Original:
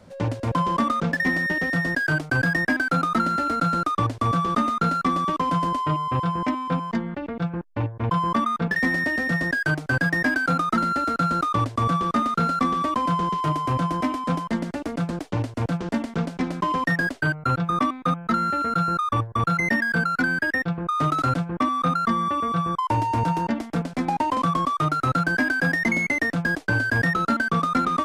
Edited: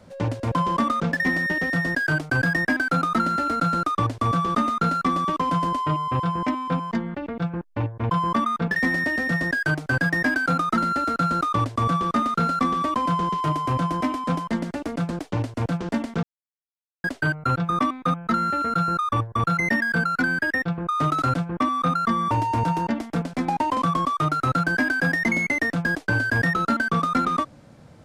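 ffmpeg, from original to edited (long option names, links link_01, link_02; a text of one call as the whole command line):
ffmpeg -i in.wav -filter_complex "[0:a]asplit=4[link_01][link_02][link_03][link_04];[link_01]atrim=end=16.23,asetpts=PTS-STARTPTS,afade=type=out:start_time=16.226:duration=0.004:curve=hsin[link_05];[link_02]atrim=start=16.23:end=17.04,asetpts=PTS-STARTPTS,volume=0[link_06];[link_03]atrim=start=17.04:end=22.312,asetpts=PTS-STARTPTS,afade=type=in:duration=0.004:curve=hsin[link_07];[link_04]atrim=start=22.908[link_08];[link_05][link_06][link_07]concat=n=3:v=0:a=1[link_09];[link_09][link_08]acrossfade=duration=0.004:curve1=hsin:curve2=hsin" out.wav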